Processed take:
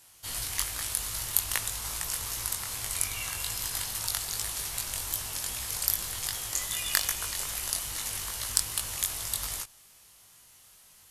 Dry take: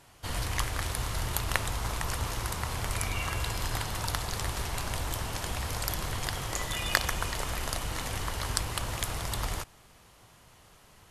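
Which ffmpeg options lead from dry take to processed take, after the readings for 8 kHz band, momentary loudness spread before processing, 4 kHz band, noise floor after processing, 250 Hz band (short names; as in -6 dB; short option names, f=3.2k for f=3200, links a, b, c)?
+7.0 dB, 4 LU, +1.5 dB, -57 dBFS, -11.0 dB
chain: -af "flanger=delay=18:depth=3.8:speed=2.5,aeval=exprs='0.531*(cos(1*acos(clip(val(0)/0.531,-1,1)))-cos(1*PI/2))+0.106*(cos(2*acos(clip(val(0)/0.531,-1,1)))-cos(2*PI/2))':c=same,crystalizer=i=7.5:c=0,volume=-8.5dB"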